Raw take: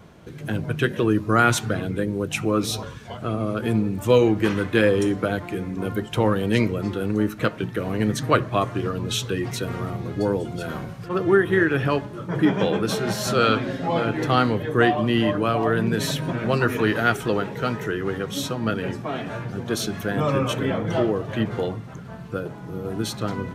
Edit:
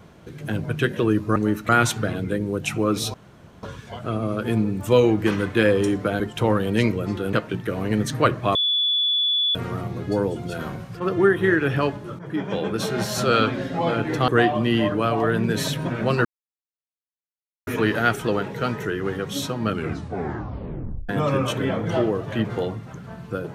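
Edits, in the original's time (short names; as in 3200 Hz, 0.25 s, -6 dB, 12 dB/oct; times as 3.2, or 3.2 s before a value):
2.81 insert room tone 0.49 s
5.38–5.96 cut
7.09–7.42 move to 1.36
8.64–9.64 bleep 3440 Hz -18 dBFS
12.28–13.05 fade in, from -13 dB
14.37–14.71 cut
16.68 insert silence 1.42 s
18.65 tape stop 1.45 s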